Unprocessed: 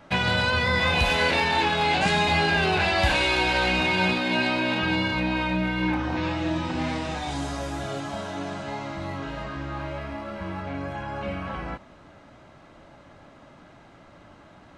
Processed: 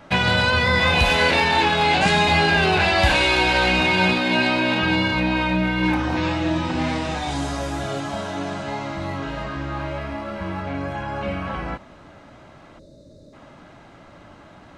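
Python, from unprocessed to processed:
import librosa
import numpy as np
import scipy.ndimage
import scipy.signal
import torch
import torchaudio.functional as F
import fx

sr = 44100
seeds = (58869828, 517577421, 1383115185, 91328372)

y = fx.high_shelf(x, sr, hz=fx.line((5.83, 5800.0), (6.37, 10000.0)), db=10.0, at=(5.83, 6.37), fade=0.02)
y = fx.spec_box(y, sr, start_s=12.79, length_s=0.54, low_hz=660.0, high_hz=3500.0, gain_db=-24)
y = y * 10.0 ** (4.5 / 20.0)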